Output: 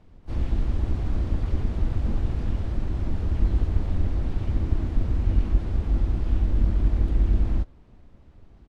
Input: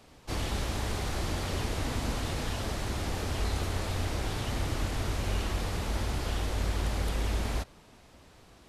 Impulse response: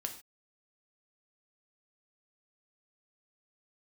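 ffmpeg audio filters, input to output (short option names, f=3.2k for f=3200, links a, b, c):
-filter_complex "[0:a]aemphasis=mode=reproduction:type=riaa,tremolo=f=280:d=0.333,asplit=3[a][b][c];[b]asetrate=35002,aresample=44100,atempo=1.25992,volume=-1dB[d];[c]asetrate=88200,aresample=44100,atempo=0.5,volume=-17dB[e];[a][d][e]amix=inputs=3:normalize=0,volume=-7.5dB"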